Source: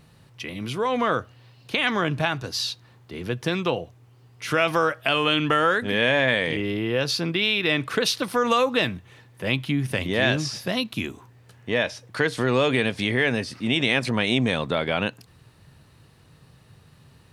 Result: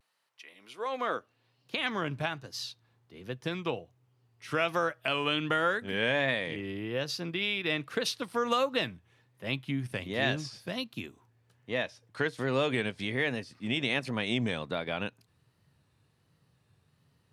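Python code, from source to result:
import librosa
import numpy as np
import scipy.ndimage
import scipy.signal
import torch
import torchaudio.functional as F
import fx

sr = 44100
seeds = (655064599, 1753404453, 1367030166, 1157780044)

y = fx.filter_sweep_highpass(x, sr, from_hz=830.0, to_hz=71.0, start_s=0.3, end_s=2.22, q=0.8)
y = fx.vibrato(y, sr, rate_hz=1.3, depth_cents=75.0)
y = fx.upward_expand(y, sr, threshold_db=-36.0, expansion=1.5)
y = y * librosa.db_to_amplitude(-6.5)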